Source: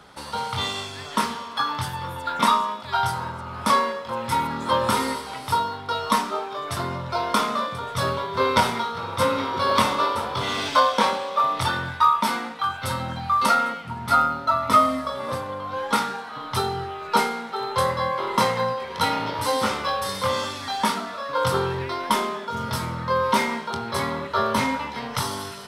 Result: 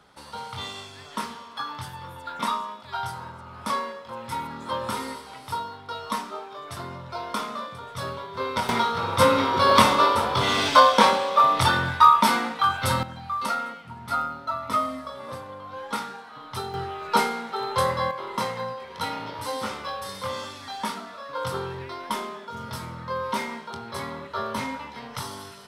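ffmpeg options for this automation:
-af "asetnsamples=n=441:p=0,asendcmd='8.69 volume volume 3.5dB;13.03 volume volume -8dB;16.74 volume volume -1dB;18.11 volume volume -7.5dB',volume=-8dB"

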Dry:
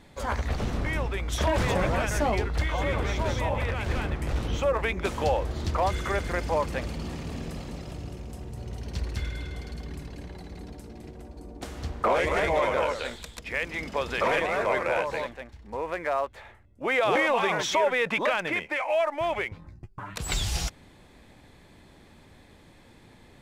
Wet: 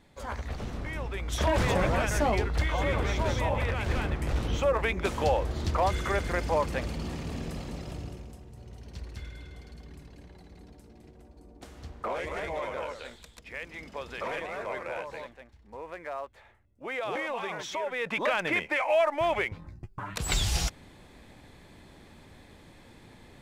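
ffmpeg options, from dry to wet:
-af "volume=10dB,afade=t=in:st=0.95:d=0.58:silence=0.473151,afade=t=out:st=7.98:d=0.44:silence=0.354813,afade=t=in:st=17.89:d=0.66:silence=0.298538"

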